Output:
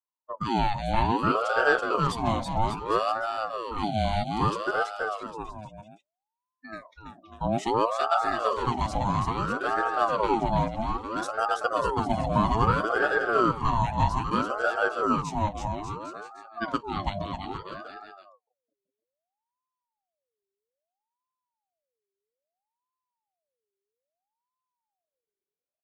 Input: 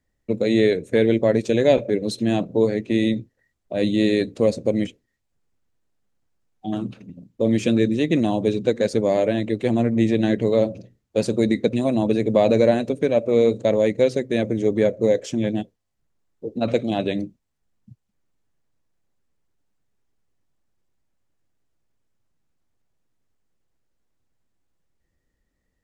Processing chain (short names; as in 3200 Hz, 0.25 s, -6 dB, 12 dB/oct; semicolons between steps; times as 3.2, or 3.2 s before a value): spectral noise reduction 22 dB; bouncing-ball echo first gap 0.33 s, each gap 0.8×, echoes 5; ring modulator with a swept carrier 710 Hz, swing 45%, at 0.61 Hz; gain -4 dB